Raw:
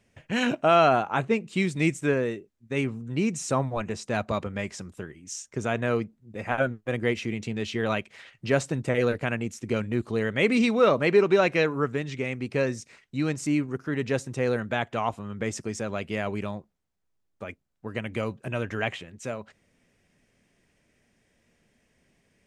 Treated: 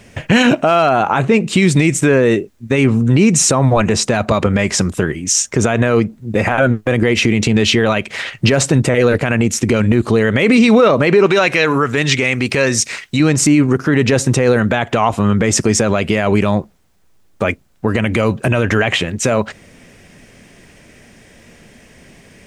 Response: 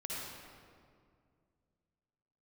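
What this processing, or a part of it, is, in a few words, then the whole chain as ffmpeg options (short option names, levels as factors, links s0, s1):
loud club master: -filter_complex "[0:a]acompressor=threshold=0.0282:ratio=1.5,asoftclip=type=hard:threshold=0.178,alimiter=level_in=20:limit=0.891:release=50:level=0:latency=1,asettb=1/sr,asplit=3[s0][s1][s2];[s0]atrim=end=11.264[s3];[s1]atrim=start=11.26:end=13.2,asetpts=PTS-STARTPTS,afade=t=in:d=0.004:c=qsin,afade=t=out:st=1.936:d=0.004:c=qsin,tiltshelf=f=970:g=-5[s4];[s2]atrim=start=13.196[s5];[s3][s4]acrossfade=d=0.004:c1=hsin:c2=qsin[s6];[s6][s5]acrossfade=d=0.004:c1=qsin:c2=hsin,volume=0.794"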